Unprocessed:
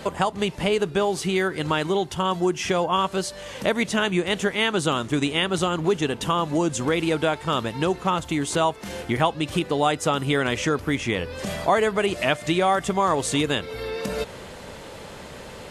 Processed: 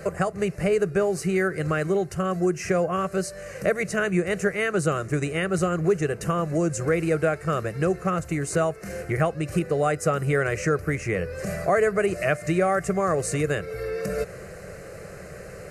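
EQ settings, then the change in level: bell 190 Hz +10 dB 1.3 oct; fixed phaser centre 920 Hz, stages 6; 0.0 dB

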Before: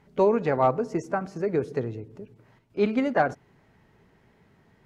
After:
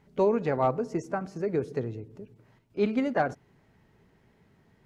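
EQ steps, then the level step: bell 1200 Hz -3 dB 2.8 oct; -1.5 dB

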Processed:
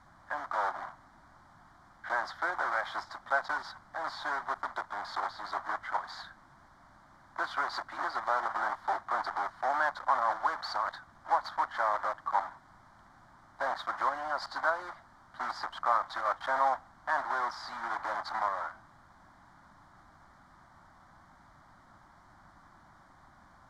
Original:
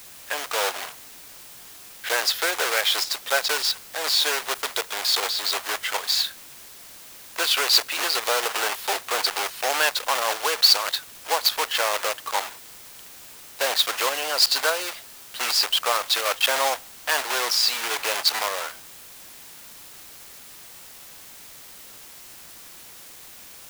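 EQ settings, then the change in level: LPF 1400 Hz 12 dB/oct; fixed phaser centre 1100 Hz, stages 4; 0.0 dB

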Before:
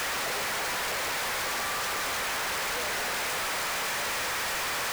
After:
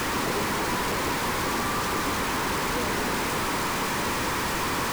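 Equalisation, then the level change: resonant low shelf 460 Hz +13.5 dB, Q 1.5; bell 980 Hz +10.5 dB 0.7 oct; 0.0 dB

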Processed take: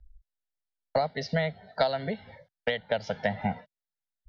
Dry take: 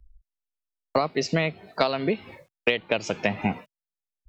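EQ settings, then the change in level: air absorption 110 m; fixed phaser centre 1700 Hz, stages 8; 0.0 dB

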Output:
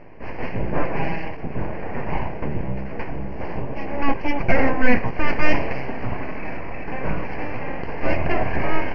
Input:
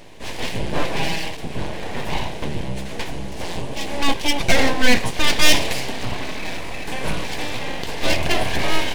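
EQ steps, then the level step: polynomial smoothing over 15 samples; Butterworth band-stop 3600 Hz, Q 1.5; air absorption 350 m; +1.0 dB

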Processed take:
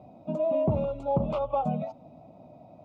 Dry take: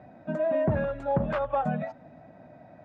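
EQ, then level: Butterworth band-stop 1700 Hz, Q 1.2; 0.0 dB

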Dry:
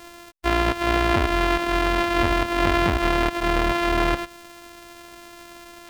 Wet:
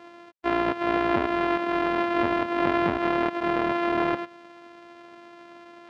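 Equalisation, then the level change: HPF 190 Hz 12 dB/oct; tape spacing loss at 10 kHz 29 dB; 0.0 dB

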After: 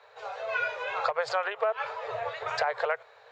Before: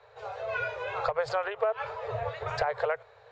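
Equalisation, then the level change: HPF 870 Hz 6 dB/oct; +4.5 dB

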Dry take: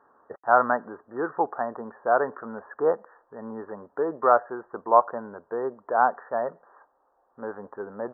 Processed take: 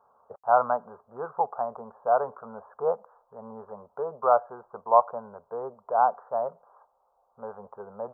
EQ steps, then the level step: fixed phaser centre 750 Hz, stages 4; 0.0 dB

